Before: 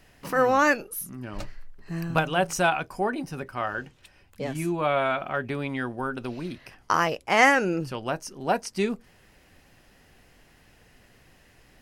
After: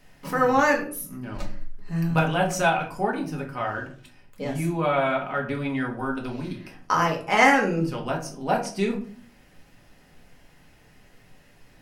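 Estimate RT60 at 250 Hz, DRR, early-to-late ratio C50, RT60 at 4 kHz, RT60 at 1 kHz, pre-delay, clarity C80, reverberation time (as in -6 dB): 0.70 s, -0.5 dB, 9.5 dB, 0.30 s, 0.45 s, 4 ms, 14.5 dB, 0.50 s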